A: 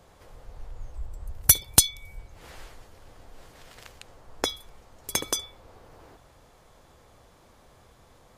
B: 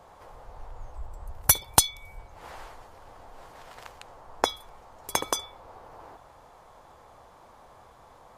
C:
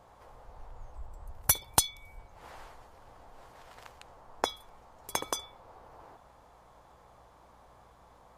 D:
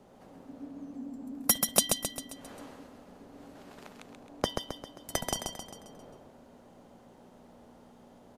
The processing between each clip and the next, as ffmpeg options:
ffmpeg -i in.wav -af "equalizer=frequency=900:width_type=o:width=1.5:gain=12.5,volume=-3dB" out.wav
ffmpeg -i in.wav -af "aeval=exprs='val(0)+0.001*(sin(2*PI*60*n/s)+sin(2*PI*2*60*n/s)/2+sin(2*PI*3*60*n/s)/3+sin(2*PI*4*60*n/s)/4+sin(2*PI*5*60*n/s)/5)':channel_layout=same,volume=-5.5dB" out.wav
ffmpeg -i in.wav -af "aecho=1:1:133|266|399|532|665|798:0.562|0.281|0.141|0.0703|0.0351|0.0176,afreqshift=-300" out.wav

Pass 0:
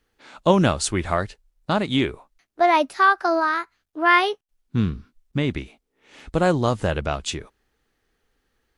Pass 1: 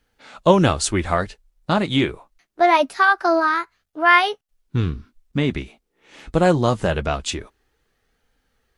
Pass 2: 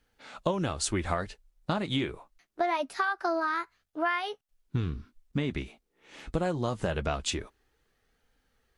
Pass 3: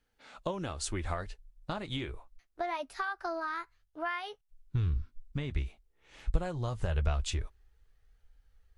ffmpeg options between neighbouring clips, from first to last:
ffmpeg -i in.wav -af "flanger=delay=1.3:depth=4.7:regen=-55:speed=0.24:shape=sinusoidal,volume=6.5dB" out.wav
ffmpeg -i in.wav -af "acompressor=threshold=-21dB:ratio=12,volume=-4dB" out.wav
ffmpeg -i in.wav -af "asubboost=boost=11.5:cutoff=69,volume=-6dB" out.wav

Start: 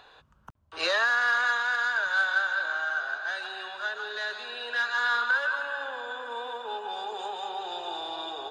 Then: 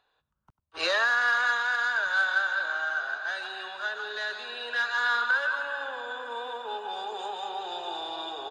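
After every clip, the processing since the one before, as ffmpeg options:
ffmpeg -i in.wav -af "agate=range=-19dB:threshold=-44dB:ratio=16:detection=peak,aecho=1:1:95:0.112" out.wav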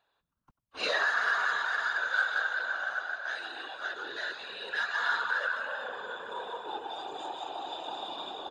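ffmpeg -i in.wav -af "afftfilt=real='hypot(re,im)*cos(2*PI*random(0))':imag='hypot(re,im)*sin(2*PI*random(1))':win_size=512:overlap=0.75,volume=2.5dB" out.wav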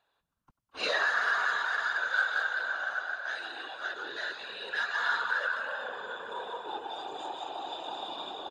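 ffmpeg -i in.wav -filter_complex "[0:a]aresample=32000,aresample=44100,asplit=2[link_01][link_02];[link_02]adelay=210,highpass=300,lowpass=3400,asoftclip=type=hard:threshold=-24dB,volume=-16dB[link_03];[link_01][link_03]amix=inputs=2:normalize=0" out.wav

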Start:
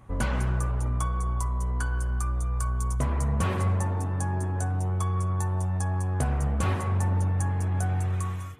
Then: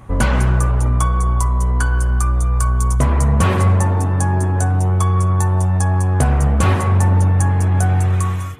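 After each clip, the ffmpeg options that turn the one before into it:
ffmpeg -i in.wav -af "acontrast=85,volume=4.5dB" out.wav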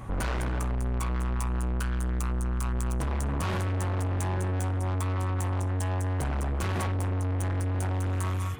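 ffmpeg -i in.wav -af "alimiter=limit=-10.5dB:level=0:latency=1,asoftclip=type=tanh:threshold=-27dB" out.wav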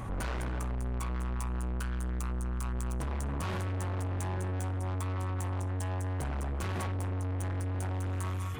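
ffmpeg -i in.wav -af "alimiter=level_in=11.5dB:limit=-24dB:level=0:latency=1:release=16,volume=-11.5dB,volume=3.5dB" out.wav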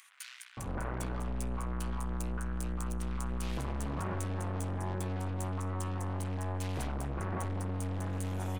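ffmpeg -i in.wav -filter_complex "[0:a]acrossover=split=140[link_01][link_02];[link_01]aeval=exprs='clip(val(0),-1,0.00631)':channel_layout=same[link_03];[link_03][link_02]amix=inputs=2:normalize=0,acrossover=split=2000[link_04][link_05];[link_04]adelay=570[link_06];[link_06][link_05]amix=inputs=2:normalize=0" out.wav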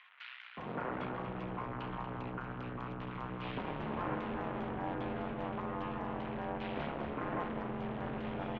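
ffmpeg -i in.wav -filter_complex "[0:a]highpass=frequency=220:width_type=q:width=0.5412,highpass=frequency=220:width_type=q:width=1.307,lowpass=frequency=3400:width_type=q:width=0.5176,lowpass=frequency=3400:width_type=q:width=0.7071,lowpass=frequency=3400:width_type=q:width=1.932,afreqshift=-60,asplit=9[link_01][link_02][link_03][link_04][link_05][link_06][link_07][link_08][link_09];[link_02]adelay=235,afreqshift=-74,volume=-9dB[link_10];[link_03]adelay=470,afreqshift=-148,volume=-12.9dB[link_11];[link_04]adelay=705,afreqshift=-222,volume=-16.8dB[link_12];[link_05]adelay=940,afreqshift=-296,volume=-20.6dB[link_13];[link_06]adelay=1175,afreqshift=-370,volume=-24.5dB[link_14];[link_07]adelay=1410,afreqshift=-444,volume=-28.4dB[link_15];[link_08]adelay=1645,afreqshift=-518,volume=-32.3dB[link_16];[link_09]adelay=1880,afreqshift=-592,volume=-36.1dB[link_17];[link_01][link_10][link_11][link_12][link_13][link_14][link_15][link_16][link_17]amix=inputs=9:normalize=0,volume=2dB" out.wav

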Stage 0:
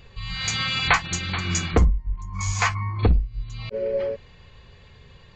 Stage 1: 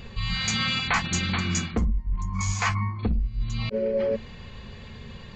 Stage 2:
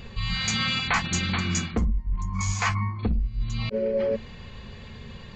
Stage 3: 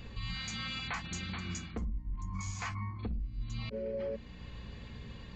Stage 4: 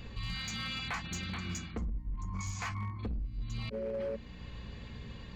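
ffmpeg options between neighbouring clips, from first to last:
ffmpeg -i in.wav -af "equalizer=frequency=220:width=3.8:gain=12.5,areverse,acompressor=threshold=-29dB:ratio=6,areverse,volume=6.5dB" out.wav
ffmpeg -i in.wav -af anull out.wav
ffmpeg -i in.wav -af "alimiter=limit=-22.5dB:level=0:latency=1:release=378,aeval=exprs='val(0)+0.00794*(sin(2*PI*60*n/s)+sin(2*PI*2*60*n/s)/2+sin(2*PI*3*60*n/s)/3+sin(2*PI*4*60*n/s)/4+sin(2*PI*5*60*n/s)/5)':channel_layout=same,volume=-7dB" out.wav
ffmpeg -i in.wav -af "asoftclip=type=hard:threshold=-32dB,volume=1dB" out.wav

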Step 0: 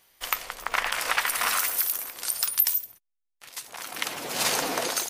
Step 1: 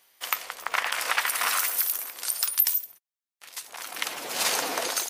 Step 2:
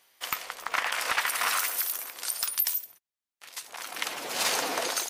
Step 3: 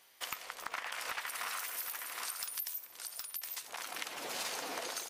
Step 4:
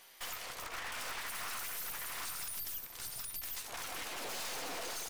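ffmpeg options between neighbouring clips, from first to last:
ffmpeg -i in.wav -af "highpass=frequency=400:poles=1" out.wav
ffmpeg -i in.wav -af "highshelf=frequency=9600:gain=-5,asoftclip=type=tanh:threshold=-14.5dB" out.wav
ffmpeg -i in.wav -af "aecho=1:1:766:0.316,acompressor=threshold=-39dB:ratio=4" out.wav
ffmpeg -i in.wav -af "aeval=exprs='(tanh(251*val(0)+0.65)-tanh(0.65))/251':channel_layout=same,volume=8.5dB" out.wav

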